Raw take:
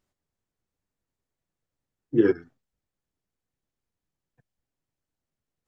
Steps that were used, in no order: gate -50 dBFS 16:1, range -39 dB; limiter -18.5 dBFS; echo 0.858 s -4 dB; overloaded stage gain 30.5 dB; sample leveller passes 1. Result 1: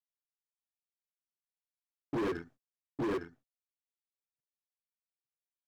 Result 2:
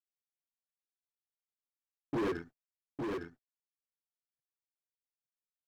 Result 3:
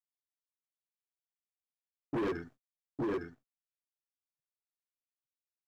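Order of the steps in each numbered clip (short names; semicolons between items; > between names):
gate > echo > sample leveller > limiter > overloaded stage; sample leveller > limiter > overloaded stage > gate > echo; gate > limiter > echo > overloaded stage > sample leveller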